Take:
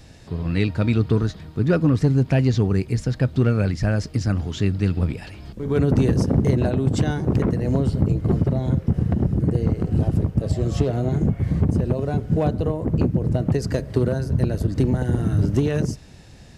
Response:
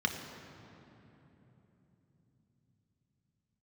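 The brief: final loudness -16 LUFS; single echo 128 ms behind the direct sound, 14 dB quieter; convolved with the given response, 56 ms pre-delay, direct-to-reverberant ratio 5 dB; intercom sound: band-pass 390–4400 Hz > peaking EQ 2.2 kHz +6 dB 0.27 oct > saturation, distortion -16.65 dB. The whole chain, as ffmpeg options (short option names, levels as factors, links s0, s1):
-filter_complex "[0:a]aecho=1:1:128:0.2,asplit=2[s0][s1];[1:a]atrim=start_sample=2205,adelay=56[s2];[s1][s2]afir=irnorm=-1:irlink=0,volume=0.237[s3];[s0][s3]amix=inputs=2:normalize=0,highpass=390,lowpass=4400,equalizer=f=2200:t=o:w=0.27:g=6,asoftclip=threshold=0.112,volume=5.01"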